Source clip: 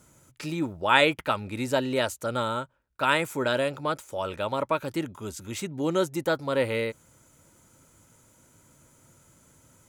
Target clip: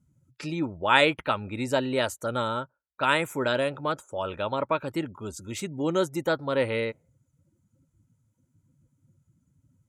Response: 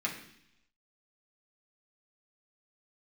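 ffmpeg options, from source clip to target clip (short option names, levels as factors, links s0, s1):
-af "afftdn=nr=25:nf=-49"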